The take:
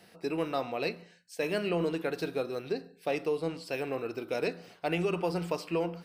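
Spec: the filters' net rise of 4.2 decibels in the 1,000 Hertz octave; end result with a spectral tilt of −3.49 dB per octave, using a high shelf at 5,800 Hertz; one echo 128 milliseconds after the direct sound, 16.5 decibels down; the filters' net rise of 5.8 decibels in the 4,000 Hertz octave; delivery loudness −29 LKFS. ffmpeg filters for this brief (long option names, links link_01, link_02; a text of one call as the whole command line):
ffmpeg -i in.wav -af "equalizer=frequency=1000:width_type=o:gain=5.5,equalizer=frequency=4000:width_type=o:gain=5.5,highshelf=frequency=5800:gain=4.5,aecho=1:1:128:0.15,volume=2.5dB" out.wav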